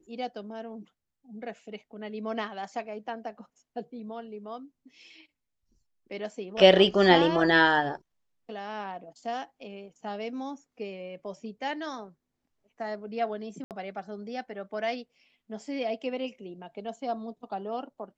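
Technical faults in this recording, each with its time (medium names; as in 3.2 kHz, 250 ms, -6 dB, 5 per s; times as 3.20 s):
13.64–13.71 s: dropout 68 ms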